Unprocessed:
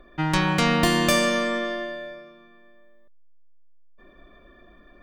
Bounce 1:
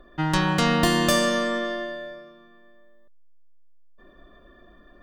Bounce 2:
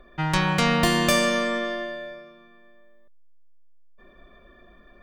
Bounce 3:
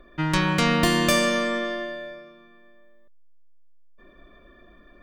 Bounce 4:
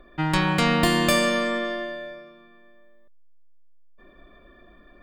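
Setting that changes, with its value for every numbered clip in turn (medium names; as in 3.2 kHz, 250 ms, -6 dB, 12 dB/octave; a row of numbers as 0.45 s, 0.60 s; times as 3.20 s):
band-stop, frequency: 2.3 kHz, 300 Hz, 800 Hz, 5.9 kHz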